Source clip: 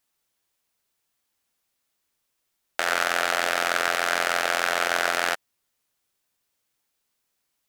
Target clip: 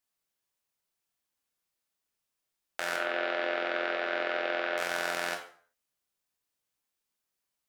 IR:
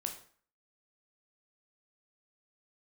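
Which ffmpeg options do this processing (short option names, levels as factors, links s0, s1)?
-filter_complex "[0:a]asettb=1/sr,asplit=3[s0][s1][s2];[s0]atrim=end=2.964[s3];[s1]atrim=start=2.96:end=4.78,asetpts=PTS-STARTPTS,afade=t=in:d=0.004:c=qsin,afade=t=out:st=1.816:d=0.004:c=qsin,highpass=f=220:w=0.5412,highpass=f=220:w=1.3066,equalizer=f=360:t=q:w=4:g=7,equalizer=f=560:t=q:w=4:g=6,equalizer=f=1000:t=q:w=4:g=-3,lowpass=f=3600:w=0.5412,lowpass=f=3600:w=1.3066[s4];[s2]atrim=start=4.776[s5];[s3][s4]acrossfade=d=0.004:c1=hsin:c2=qsin[s6];[s6][s5]acrossfade=d=0.004:c1=qsin:c2=hsin[s7];[1:a]atrim=start_sample=2205,afade=t=out:st=0.45:d=0.01,atrim=end_sample=20286[s8];[s7][s8]afir=irnorm=-1:irlink=0,volume=0.398"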